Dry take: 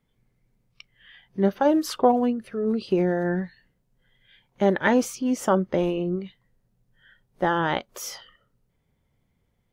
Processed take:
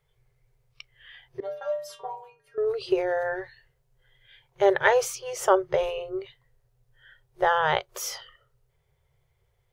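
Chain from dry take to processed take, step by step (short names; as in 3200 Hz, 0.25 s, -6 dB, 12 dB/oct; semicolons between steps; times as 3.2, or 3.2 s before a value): FFT band-reject 160–360 Hz; 1.4–2.58 metallic resonator 140 Hz, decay 0.55 s, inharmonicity 0.008; gain +2 dB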